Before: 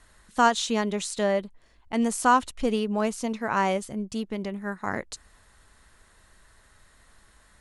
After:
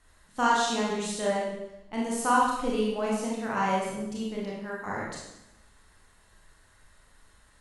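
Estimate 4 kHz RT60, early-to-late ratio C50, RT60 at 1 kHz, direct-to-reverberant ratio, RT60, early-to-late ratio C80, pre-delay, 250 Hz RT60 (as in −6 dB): 0.85 s, 0.5 dB, 0.85 s, −4.5 dB, 0.90 s, 3.5 dB, 24 ms, 1.1 s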